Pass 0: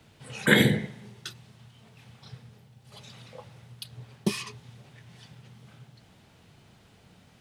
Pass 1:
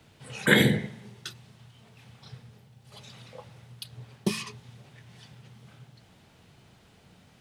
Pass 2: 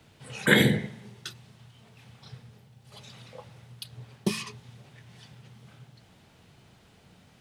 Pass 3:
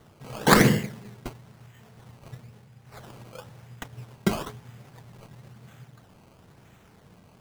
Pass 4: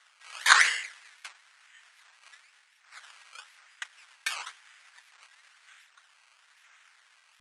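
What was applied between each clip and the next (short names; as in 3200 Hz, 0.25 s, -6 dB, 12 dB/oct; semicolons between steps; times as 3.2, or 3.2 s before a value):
de-hum 54.19 Hz, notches 5
nothing audible
decimation with a swept rate 17×, swing 100% 1 Hz; gain +3 dB
ladder high-pass 1300 Hz, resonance 30%; downsampling 22050 Hz; record warp 78 rpm, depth 250 cents; gain +8.5 dB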